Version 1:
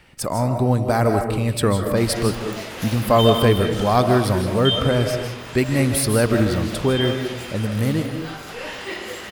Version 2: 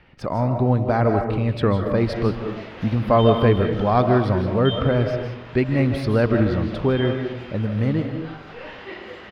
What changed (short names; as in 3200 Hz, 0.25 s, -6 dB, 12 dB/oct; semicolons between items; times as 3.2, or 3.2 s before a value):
background -3.5 dB; master: add air absorption 280 m